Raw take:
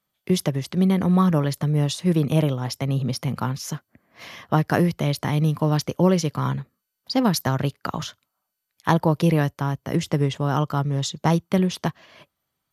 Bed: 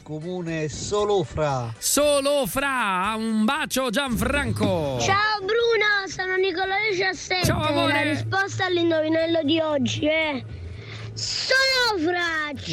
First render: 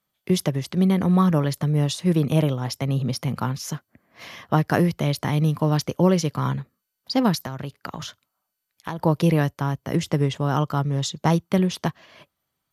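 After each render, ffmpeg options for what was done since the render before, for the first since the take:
ffmpeg -i in.wav -filter_complex "[0:a]asettb=1/sr,asplit=3[link_01][link_02][link_03];[link_01]atrim=end=7.354[link_04];[link_02]atrim=start=7.35:end=8.99,asetpts=PTS-STARTPTS,afade=type=in:duration=0.004:curve=qsin,afade=type=out:start_time=1.636:duration=0.004:curve=qsin,acompressor=threshold=-29dB:ratio=3:attack=3.2:release=140:knee=1:detection=peak[link_05];[link_03]atrim=start=8.986[link_06];[link_04][link_05]acrossfade=duration=0.004:curve1=hsin:curve2=qsin[link_07];[link_07][link_06]acrossfade=duration=0.004:curve1=qsin:curve2=hsin" out.wav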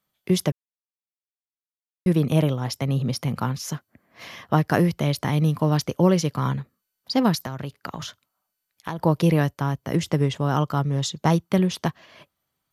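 ffmpeg -i in.wav -filter_complex "[0:a]asplit=3[link_01][link_02][link_03];[link_01]atrim=end=0.52,asetpts=PTS-STARTPTS,afade=type=out:start_time=0.516:duration=0.004:curve=hsin[link_04];[link_02]atrim=start=0.52:end=2.06,asetpts=PTS-STARTPTS,volume=0[link_05];[link_03]atrim=start=2.06,asetpts=PTS-STARTPTS,afade=type=in:duration=0.004:curve=hsin[link_06];[link_04][link_05][link_06]concat=n=3:v=0:a=1" out.wav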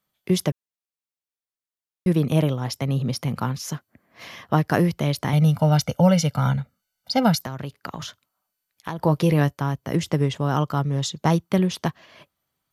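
ffmpeg -i in.wav -filter_complex "[0:a]asettb=1/sr,asplit=3[link_01][link_02][link_03];[link_01]atrim=end=5.334[link_04];[link_02]atrim=start=5.33:end=7.39,asetpts=PTS-STARTPTS,afade=type=in:duration=0.004:curve=qsin,afade=type=out:start_time=2.056:duration=0.004:curve=qsin,aecho=1:1:1.4:0.91,atrim=end_sample=90846[link_05];[link_03]atrim=start=7.386[link_06];[link_04][link_05]acrossfade=duration=0.004:curve1=hsin:curve2=qsin[link_07];[link_07][link_06]acrossfade=duration=0.004:curve1=qsin:curve2=hsin,asettb=1/sr,asplit=3[link_08][link_09][link_10];[link_08]atrim=end=9.004[link_11];[link_09]atrim=start=9:end=9.57,asetpts=PTS-STARTPTS,afade=type=in:duration=0.004:curve=qsin,afade=type=out:start_time=0.566:duration=0.004:curve=qsin,asplit=2[link_12][link_13];[link_13]adelay=14,volume=-10.5dB[link_14];[link_12][link_14]amix=inputs=2:normalize=0,atrim=end_sample=25137[link_15];[link_10]atrim=start=9.566[link_16];[link_11][link_15]acrossfade=duration=0.004:curve1=hsin:curve2=qsin[link_17];[link_17][link_16]acrossfade=duration=0.004:curve1=qsin:curve2=hsin" out.wav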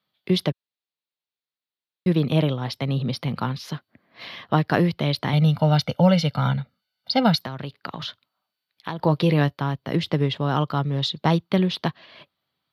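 ffmpeg -i in.wav -af "highpass=100,highshelf=frequency=5300:width_type=q:width=3:gain=-9.5" out.wav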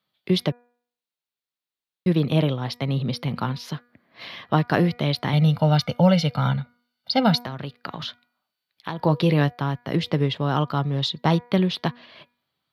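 ffmpeg -i in.wav -af "bandreject=frequency=241.9:width_type=h:width=4,bandreject=frequency=483.8:width_type=h:width=4,bandreject=frequency=725.7:width_type=h:width=4,bandreject=frequency=967.6:width_type=h:width=4,bandreject=frequency=1209.5:width_type=h:width=4,bandreject=frequency=1451.4:width_type=h:width=4,bandreject=frequency=1693.3:width_type=h:width=4,bandreject=frequency=1935.2:width_type=h:width=4,bandreject=frequency=2177.1:width_type=h:width=4,bandreject=frequency=2419:width_type=h:width=4" out.wav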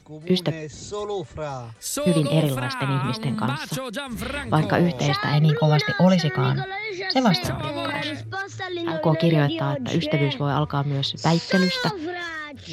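ffmpeg -i in.wav -i bed.wav -filter_complex "[1:a]volume=-7dB[link_01];[0:a][link_01]amix=inputs=2:normalize=0" out.wav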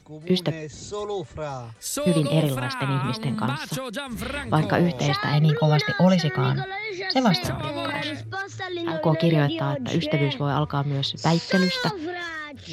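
ffmpeg -i in.wav -af "volume=-1dB" out.wav

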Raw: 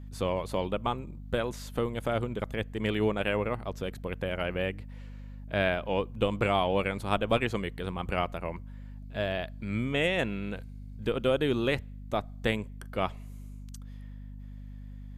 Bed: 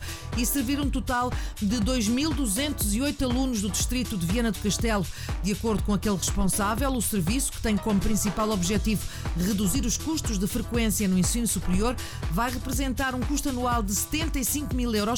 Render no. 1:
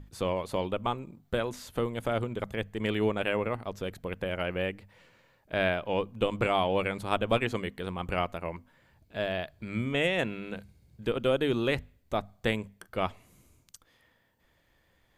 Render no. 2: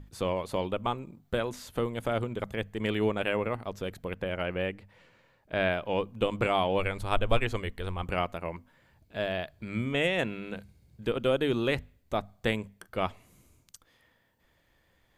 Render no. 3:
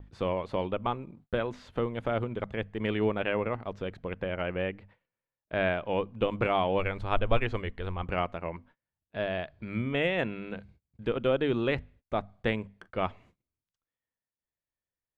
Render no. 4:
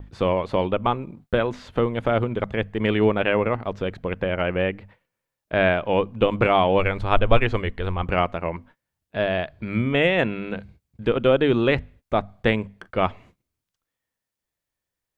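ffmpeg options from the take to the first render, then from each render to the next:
ffmpeg -i in.wav -af "bandreject=frequency=50:width_type=h:width=6,bandreject=frequency=100:width_type=h:width=6,bandreject=frequency=150:width_type=h:width=6,bandreject=frequency=200:width_type=h:width=6,bandreject=frequency=250:width_type=h:width=6" out.wav
ffmpeg -i in.wav -filter_complex "[0:a]asettb=1/sr,asplit=3[link_01][link_02][link_03];[link_01]atrim=end=4.144[link_04];[link_02]atrim=start=4.14:end=5.7,asetpts=PTS-STARTPTS,afade=type=in:duration=0.004:curve=qsin,afade=type=out:start_time=1.556:duration=0.004:curve=qsin,highshelf=frequency=5700:gain=-6[link_05];[link_03]atrim=start=5.696[link_06];[link_04][link_05]acrossfade=duration=0.004:curve1=hsin:curve2=qsin[link_07];[link_07][link_06]acrossfade=duration=0.004:curve1=qsin:curve2=hsin,asplit=3[link_08][link_09][link_10];[link_08]afade=type=out:start_time=6.78:duration=0.02[link_11];[link_09]asubboost=boost=10.5:cutoff=55,afade=type=in:start_time=6.78:duration=0.02,afade=type=out:start_time=8.02:duration=0.02[link_12];[link_10]afade=type=in:start_time=8.02:duration=0.02[link_13];[link_11][link_12][link_13]amix=inputs=3:normalize=0" out.wav
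ffmpeg -i in.wav -af "lowpass=3000,agate=range=-30dB:threshold=-55dB:ratio=16:detection=peak" out.wav
ffmpeg -i in.wav -af "volume=8.5dB" out.wav

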